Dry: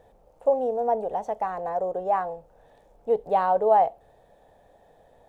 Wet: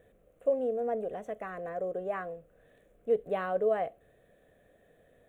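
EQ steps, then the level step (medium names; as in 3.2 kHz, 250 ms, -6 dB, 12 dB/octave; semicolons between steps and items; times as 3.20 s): bass shelf 83 Hz -10 dB; static phaser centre 2.1 kHz, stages 4; 0.0 dB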